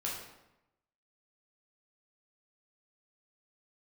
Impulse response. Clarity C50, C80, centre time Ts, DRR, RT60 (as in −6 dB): 2.5 dB, 5.5 dB, 52 ms, −4.5 dB, 0.90 s